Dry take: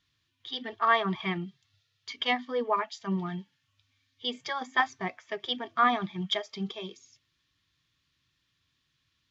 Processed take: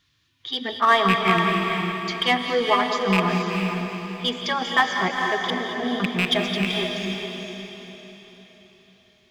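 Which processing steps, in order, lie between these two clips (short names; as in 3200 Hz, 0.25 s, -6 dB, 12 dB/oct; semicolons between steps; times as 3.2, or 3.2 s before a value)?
rattling part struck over -32 dBFS, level -17 dBFS; 5.5–6 inverse Chebyshev band-stop 950–4300 Hz, stop band 40 dB; in parallel at -5.5 dB: hard clip -27 dBFS, distortion -7 dB; on the sum: diffused feedback echo 0.457 s, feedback 43%, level -4 dB; non-linear reverb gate 0.25 s rising, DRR 7 dB; gain +4.5 dB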